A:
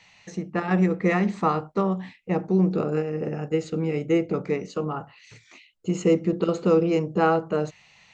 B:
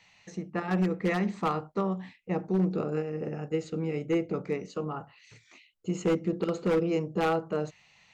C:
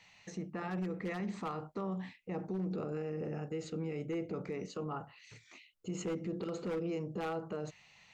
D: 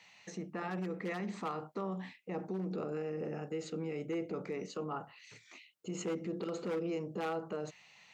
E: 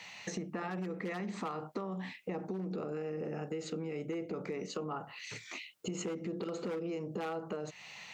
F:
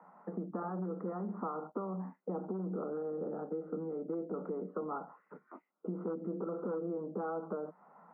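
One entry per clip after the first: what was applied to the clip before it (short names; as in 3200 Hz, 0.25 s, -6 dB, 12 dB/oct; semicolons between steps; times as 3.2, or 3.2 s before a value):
wavefolder -13.5 dBFS; gain -5.5 dB
limiter -29.5 dBFS, peak gain reduction 10.5 dB; gain -1 dB
Bessel high-pass 200 Hz, order 2; gain +1.5 dB
compressor 6:1, threshold -47 dBFS, peak gain reduction 14 dB; gain +11 dB
Chebyshev band-pass 170–1400 Hz, order 5; gain +1 dB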